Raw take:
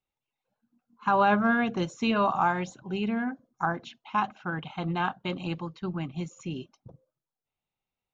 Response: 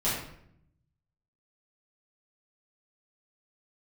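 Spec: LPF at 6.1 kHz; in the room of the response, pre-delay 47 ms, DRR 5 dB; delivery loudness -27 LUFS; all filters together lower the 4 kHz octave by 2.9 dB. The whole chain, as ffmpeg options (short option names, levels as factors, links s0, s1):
-filter_complex "[0:a]lowpass=6100,equalizer=f=4000:t=o:g=-4,asplit=2[s0][s1];[1:a]atrim=start_sample=2205,adelay=47[s2];[s1][s2]afir=irnorm=-1:irlink=0,volume=0.178[s3];[s0][s3]amix=inputs=2:normalize=0"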